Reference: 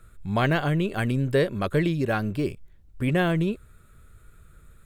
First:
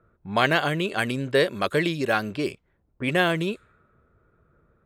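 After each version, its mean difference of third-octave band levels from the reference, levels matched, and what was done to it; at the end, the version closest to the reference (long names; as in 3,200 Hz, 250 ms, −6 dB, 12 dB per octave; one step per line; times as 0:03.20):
4.5 dB: dynamic equaliser 4,500 Hz, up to +4 dB, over −45 dBFS, Q 0.75
high-pass filter 470 Hz 6 dB per octave
low-pass that shuts in the quiet parts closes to 770 Hz, open at −26.5 dBFS
level +4.5 dB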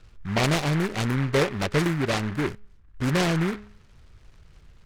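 6.0 dB: low-pass filter 2,300 Hz 12 dB per octave
hum removal 208 Hz, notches 3
short delay modulated by noise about 1,400 Hz, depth 0.19 ms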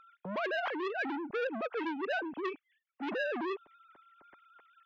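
13.0 dB: three sine waves on the formant tracks
reversed playback
downward compressor 5 to 1, threshold −32 dBFS, peak gain reduction 16 dB
reversed playback
saturating transformer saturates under 1,400 Hz
level +2 dB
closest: first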